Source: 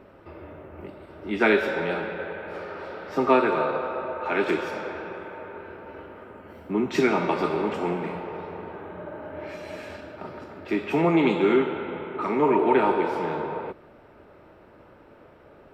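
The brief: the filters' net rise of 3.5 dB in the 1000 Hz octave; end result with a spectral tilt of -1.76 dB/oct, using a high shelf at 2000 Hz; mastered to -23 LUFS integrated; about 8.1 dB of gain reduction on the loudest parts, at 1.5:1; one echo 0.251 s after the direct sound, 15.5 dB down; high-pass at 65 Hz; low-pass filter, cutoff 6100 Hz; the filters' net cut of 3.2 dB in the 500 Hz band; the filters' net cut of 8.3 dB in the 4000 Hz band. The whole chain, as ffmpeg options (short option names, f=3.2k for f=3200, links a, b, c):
-af "highpass=65,lowpass=6.1k,equalizer=f=500:t=o:g=-5.5,equalizer=f=1k:t=o:g=7,highshelf=f=2k:g=-5,equalizer=f=4k:t=o:g=-6,acompressor=threshold=-38dB:ratio=1.5,aecho=1:1:251:0.168,volume=10dB"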